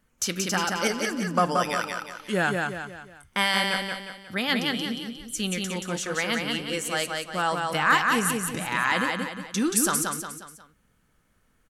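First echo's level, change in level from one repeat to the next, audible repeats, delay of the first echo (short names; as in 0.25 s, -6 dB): -3.5 dB, -7.5 dB, 4, 0.179 s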